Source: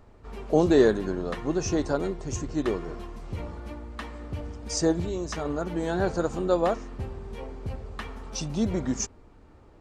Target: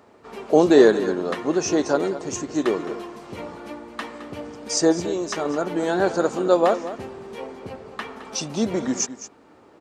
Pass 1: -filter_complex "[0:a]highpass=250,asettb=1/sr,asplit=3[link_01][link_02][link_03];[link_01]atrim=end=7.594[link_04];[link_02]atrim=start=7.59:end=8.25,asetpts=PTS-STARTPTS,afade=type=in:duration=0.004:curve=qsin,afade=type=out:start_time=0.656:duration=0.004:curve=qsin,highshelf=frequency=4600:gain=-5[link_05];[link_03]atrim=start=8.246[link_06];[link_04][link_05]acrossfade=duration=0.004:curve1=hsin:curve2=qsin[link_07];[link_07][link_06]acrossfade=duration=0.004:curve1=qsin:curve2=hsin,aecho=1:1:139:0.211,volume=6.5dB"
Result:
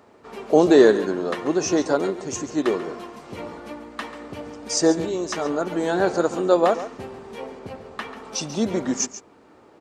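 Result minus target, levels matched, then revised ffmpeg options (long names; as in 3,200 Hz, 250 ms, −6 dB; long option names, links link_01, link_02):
echo 76 ms early
-filter_complex "[0:a]highpass=250,asettb=1/sr,asplit=3[link_01][link_02][link_03];[link_01]atrim=end=7.594[link_04];[link_02]atrim=start=7.59:end=8.25,asetpts=PTS-STARTPTS,afade=type=in:duration=0.004:curve=qsin,afade=type=out:start_time=0.656:duration=0.004:curve=qsin,highshelf=frequency=4600:gain=-5[link_05];[link_03]atrim=start=8.246[link_06];[link_04][link_05]acrossfade=duration=0.004:curve1=hsin:curve2=qsin[link_07];[link_07][link_06]acrossfade=duration=0.004:curve1=qsin:curve2=hsin,aecho=1:1:215:0.211,volume=6.5dB"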